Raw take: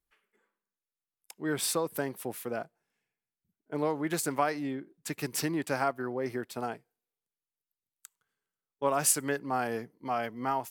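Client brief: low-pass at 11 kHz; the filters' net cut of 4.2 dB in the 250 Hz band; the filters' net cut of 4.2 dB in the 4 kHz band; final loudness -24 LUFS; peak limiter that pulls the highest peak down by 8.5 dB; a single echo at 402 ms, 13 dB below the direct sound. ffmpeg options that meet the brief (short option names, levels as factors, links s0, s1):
-af "lowpass=11000,equalizer=f=250:t=o:g=-5.5,equalizer=f=4000:t=o:g=-5.5,alimiter=limit=0.0708:level=0:latency=1,aecho=1:1:402:0.224,volume=3.98"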